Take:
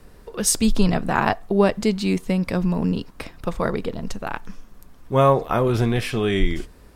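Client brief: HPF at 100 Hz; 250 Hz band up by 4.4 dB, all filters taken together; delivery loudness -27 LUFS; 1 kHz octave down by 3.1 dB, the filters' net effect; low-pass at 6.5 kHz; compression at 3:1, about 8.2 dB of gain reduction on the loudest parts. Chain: high-pass 100 Hz; low-pass 6.5 kHz; peaking EQ 250 Hz +6.5 dB; peaking EQ 1 kHz -4.5 dB; compression 3:1, threshold -21 dBFS; trim -1.5 dB

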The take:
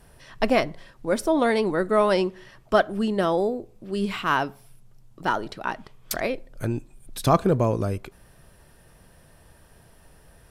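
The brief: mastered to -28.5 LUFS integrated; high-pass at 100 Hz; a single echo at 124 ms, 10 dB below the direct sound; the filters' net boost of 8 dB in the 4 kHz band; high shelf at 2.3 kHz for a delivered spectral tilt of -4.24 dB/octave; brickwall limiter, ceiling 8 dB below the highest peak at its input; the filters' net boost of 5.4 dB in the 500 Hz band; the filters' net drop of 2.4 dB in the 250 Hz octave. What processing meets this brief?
high-pass 100 Hz; peaking EQ 250 Hz -6.5 dB; peaking EQ 500 Hz +8 dB; treble shelf 2.3 kHz +7 dB; peaking EQ 4 kHz +4 dB; peak limiter -9 dBFS; delay 124 ms -10 dB; trim -6 dB

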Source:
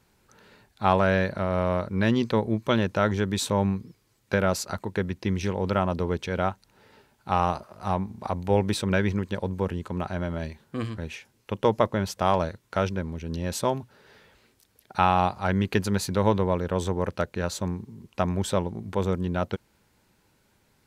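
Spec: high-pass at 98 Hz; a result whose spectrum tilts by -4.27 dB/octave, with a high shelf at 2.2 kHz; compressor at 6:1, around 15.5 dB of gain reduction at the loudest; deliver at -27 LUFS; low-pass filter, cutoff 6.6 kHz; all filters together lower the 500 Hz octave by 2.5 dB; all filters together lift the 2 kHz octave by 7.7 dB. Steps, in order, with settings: high-pass 98 Hz; low-pass 6.6 kHz; peaking EQ 500 Hz -4 dB; peaking EQ 2 kHz +6 dB; treble shelf 2.2 kHz +8.5 dB; compression 6:1, threshold -31 dBFS; trim +9 dB

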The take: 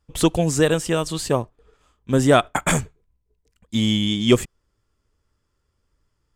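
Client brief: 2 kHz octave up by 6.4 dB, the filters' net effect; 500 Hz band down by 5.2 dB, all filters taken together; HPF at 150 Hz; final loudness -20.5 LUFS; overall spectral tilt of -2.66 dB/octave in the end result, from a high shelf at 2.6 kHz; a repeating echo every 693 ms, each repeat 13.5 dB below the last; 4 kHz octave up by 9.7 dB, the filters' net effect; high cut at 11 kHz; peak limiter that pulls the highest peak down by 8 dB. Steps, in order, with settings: high-pass 150 Hz; low-pass 11 kHz; peaking EQ 500 Hz -7 dB; peaking EQ 2 kHz +5 dB; treble shelf 2.6 kHz +3.5 dB; peaking EQ 4 kHz +8 dB; peak limiter -6.5 dBFS; feedback delay 693 ms, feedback 21%, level -13.5 dB

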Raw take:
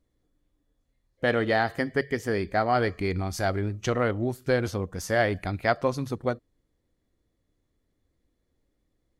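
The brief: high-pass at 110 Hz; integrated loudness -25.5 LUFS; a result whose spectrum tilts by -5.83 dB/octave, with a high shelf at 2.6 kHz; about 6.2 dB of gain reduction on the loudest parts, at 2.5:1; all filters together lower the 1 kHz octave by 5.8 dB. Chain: high-pass 110 Hz; peaking EQ 1 kHz -8.5 dB; treble shelf 2.6 kHz -7.5 dB; compression 2.5:1, threshold -31 dBFS; trim +9.5 dB

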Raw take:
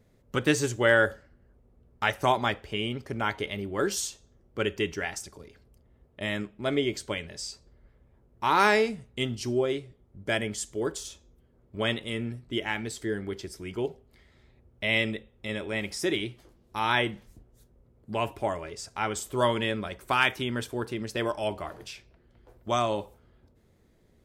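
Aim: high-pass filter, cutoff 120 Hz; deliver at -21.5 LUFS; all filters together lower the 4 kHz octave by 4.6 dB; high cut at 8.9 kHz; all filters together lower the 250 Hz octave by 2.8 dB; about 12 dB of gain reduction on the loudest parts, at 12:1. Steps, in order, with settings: high-pass 120 Hz; low-pass 8.9 kHz; peaking EQ 250 Hz -3.5 dB; peaking EQ 4 kHz -6.5 dB; compression 12:1, threshold -29 dBFS; trim +15 dB

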